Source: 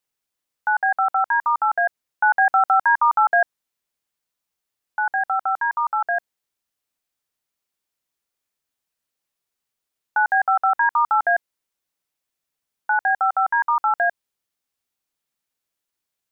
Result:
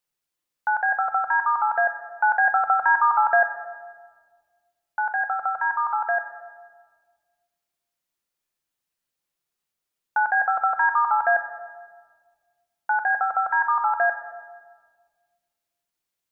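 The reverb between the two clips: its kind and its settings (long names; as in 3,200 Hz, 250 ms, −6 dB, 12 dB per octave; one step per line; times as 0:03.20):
rectangular room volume 1,600 cubic metres, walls mixed, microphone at 0.87 metres
level −2 dB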